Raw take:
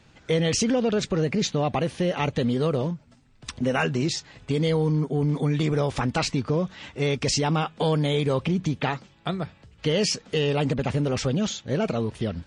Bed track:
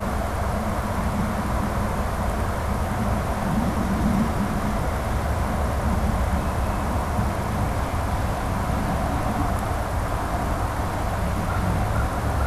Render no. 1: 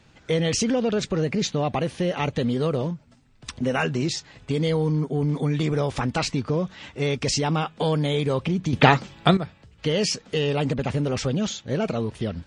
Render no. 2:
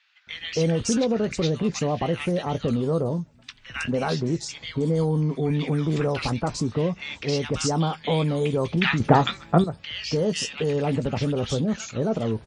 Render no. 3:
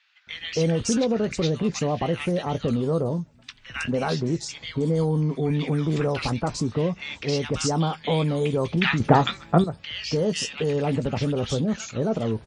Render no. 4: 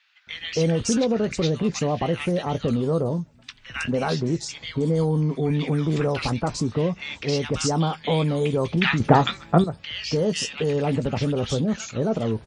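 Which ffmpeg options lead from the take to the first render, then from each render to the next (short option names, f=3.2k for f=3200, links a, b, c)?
-filter_complex "[0:a]asplit=3[a][b][c];[a]atrim=end=8.732[d];[b]atrim=start=8.728:end=9.372,asetpts=PTS-STARTPTS,volume=11dB[e];[c]atrim=start=9.368[f];[d][e]acrossfade=d=0.004:c1=hsin:c2=hsin[g];[g][f]acrossfade=d=0.004:c1=hsin:c2=hsin"
-filter_complex "[0:a]asplit=2[a][b];[b]adelay=18,volume=-13dB[c];[a][c]amix=inputs=2:normalize=0,acrossover=split=1400|4800[d][e][f];[d]adelay=270[g];[f]adelay=320[h];[g][e][h]amix=inputs=3:normalize=0"
-af anull
-af "volume=1dB"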